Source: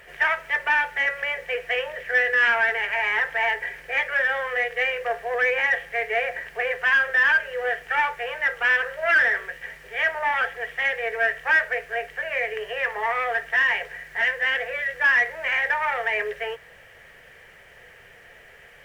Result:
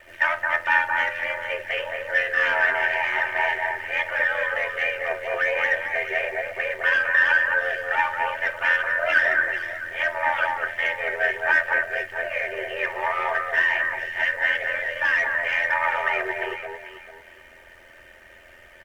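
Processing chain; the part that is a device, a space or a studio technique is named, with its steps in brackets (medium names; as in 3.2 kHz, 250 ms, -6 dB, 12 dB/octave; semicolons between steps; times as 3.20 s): echo whose repeats swap between lows and highs 220 ms, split 1.9 kHz, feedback 51%, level -2.5 dB; ring-modulated robot voice (ring modulator 42 Hz; comb 3.3 ms, depth 69%)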